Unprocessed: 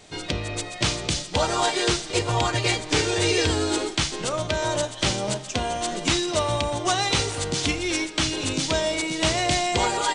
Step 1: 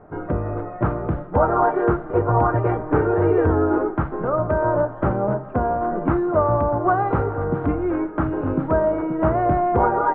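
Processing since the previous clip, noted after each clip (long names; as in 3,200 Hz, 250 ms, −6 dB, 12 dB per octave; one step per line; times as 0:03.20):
elliptic low-pass filter 1,400 Hz, stop band 80 dB
level +6.5 dB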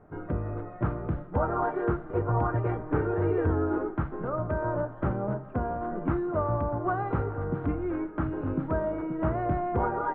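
parametric band 710 Hz −5.5 dB 2.2 octaves
level −5.5 dB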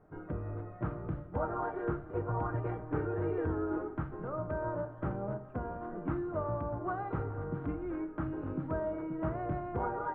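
rectangular room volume 710 cubic metres, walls furnished, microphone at 0.56 metres
level −7.5 dB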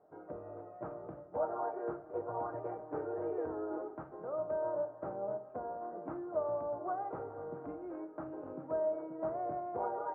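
resonant band-pass 630 Hz, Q 2.1
level +3 dB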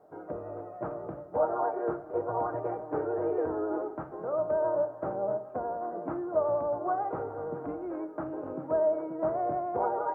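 pitch vibrato 11 Hz 29 cents
level +7.5 dB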